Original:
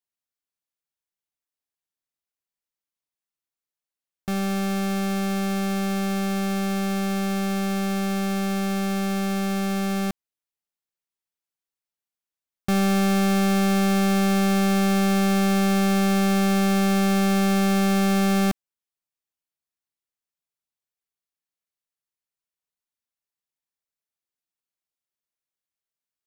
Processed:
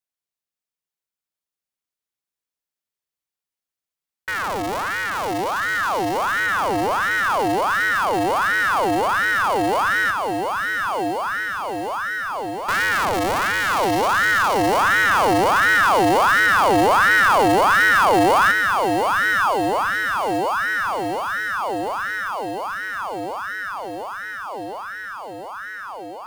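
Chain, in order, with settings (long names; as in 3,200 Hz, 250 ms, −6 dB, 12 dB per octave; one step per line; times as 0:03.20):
feedback delay with all-pass diffusion 1,080 ms, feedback 73%, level −5.5 dB
ring modulator whose carrier an LFO sweeps 1,100 Hz, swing 55%, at 1.4 Hz
level +3 dB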